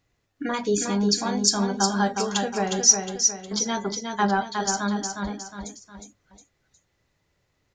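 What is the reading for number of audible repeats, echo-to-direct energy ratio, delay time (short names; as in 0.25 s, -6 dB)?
3, -4.0 dB, 0.361 s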